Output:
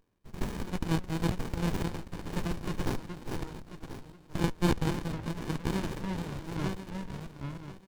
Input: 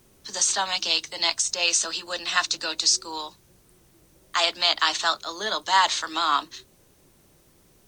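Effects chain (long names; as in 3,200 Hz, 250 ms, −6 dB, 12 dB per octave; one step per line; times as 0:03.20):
feedback delay that plays each chunk backwards 519 ms, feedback 43%, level −4 dB
high-pass filter 120 Hz 24 dB per octave
multiband delay without the direct sound highs, lows 310 ms, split 1,300 Hz
windowed peak hold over 65 samples
level −6.5 dB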